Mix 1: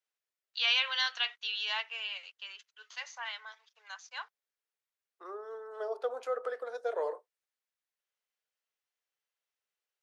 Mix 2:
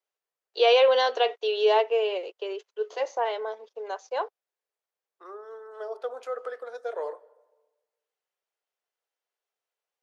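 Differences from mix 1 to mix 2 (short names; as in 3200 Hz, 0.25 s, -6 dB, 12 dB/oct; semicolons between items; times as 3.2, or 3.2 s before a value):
first voice: remove HPF 1400 Hz 24 dB/oct; reverb: on, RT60 1.2 s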